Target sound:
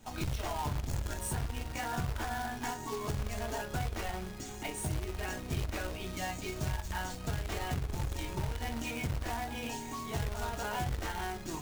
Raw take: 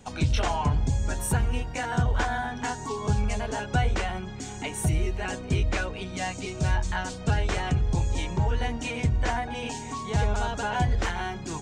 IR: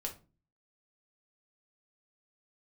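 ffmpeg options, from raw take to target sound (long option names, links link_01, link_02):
-filter_complex "[1:a]atrim=start_sample=2205,afade=type=out:start_time=0.15:duration=0.01,atrim=end_sample=7056,asetrate=66150,aresample=44100[link_01];[0:a][link_01]afir=irnorm=-1:irlink=0,acompressor=threshold=-29dB:ratio=12,acrusher=bits=2:mode=log:mix=0:aa=0.000001,volume=-2dB"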